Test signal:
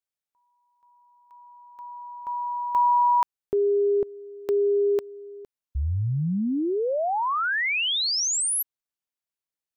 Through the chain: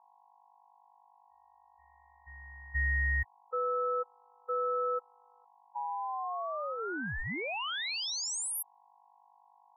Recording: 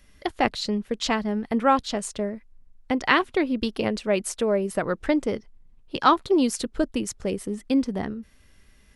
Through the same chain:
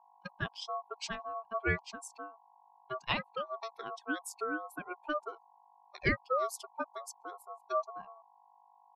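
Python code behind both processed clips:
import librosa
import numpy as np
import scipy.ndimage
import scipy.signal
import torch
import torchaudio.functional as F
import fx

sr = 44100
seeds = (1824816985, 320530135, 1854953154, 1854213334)

y = fx.bin_expand(x, sr, power=2.0)
y = fx.dmg_buzz(y, sr, base_hz=50.0, harmonics=4, level_db=-54.0, tilt_db=-4, odd_only=False)
y = y * np.sin(2.0 * np.pi * 900.0 * np.arange(len(y)) / sr)
y = y * librosa.db_to_amplitude(-6.5)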